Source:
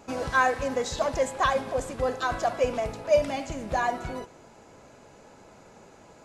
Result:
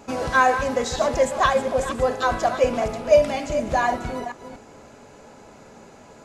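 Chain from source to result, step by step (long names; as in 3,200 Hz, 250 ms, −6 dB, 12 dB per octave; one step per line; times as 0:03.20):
delay that plays each chunk backwards 240 ms, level −10 dB
on a send: convolution reverb RT60 0.20 s, pre-delay 3 ms, DRR 12 dB
on the sum: level +4.5 dB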